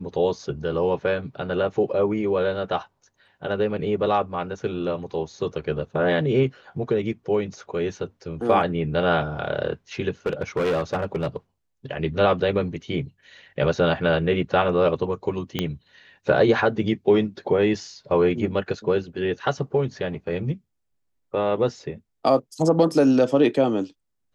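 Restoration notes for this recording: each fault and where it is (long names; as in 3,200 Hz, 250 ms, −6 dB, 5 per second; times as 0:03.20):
0:10.26–0:11.36: clipping −19 dBFS
0:15.59: click −9 dBFS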